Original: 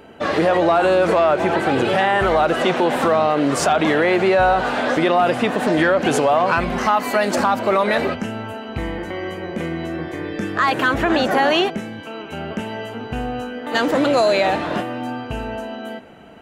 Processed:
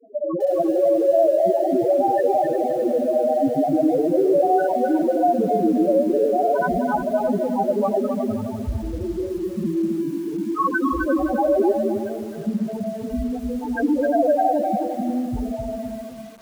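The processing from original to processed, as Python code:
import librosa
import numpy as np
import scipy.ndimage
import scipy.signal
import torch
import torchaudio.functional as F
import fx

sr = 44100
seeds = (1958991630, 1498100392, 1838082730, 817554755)

p1 = fx.lowpass(x, sr, hz=1500.0, slope=6)
p2 = fx.over_compress(p1, sr, threshold_db=-20.0, ratio=-0.5)
p3 = p1 + (p2 * librosa.db_to_amplitude(2.0))
p4 = fx.granulator(p3, sr, seeds[0], grain_ms=100.0, per_s=20.0, spray_ms=100.0, spread_st=0)
p5 = fx.spec_topn(p4, sr, count=2)
p6 = p5 + fx.echo_thinned(p5, sr, ms=352, feedback_pct=18, hz=170.0, wet_db=-11, dry=0)
p7 = fx.echo_crushed(p6, sr, ms=260, feedback_pct=35, bits=7, wet_db=-5.0)
y = p7 * librosa.db_to_amplitude(-1.0)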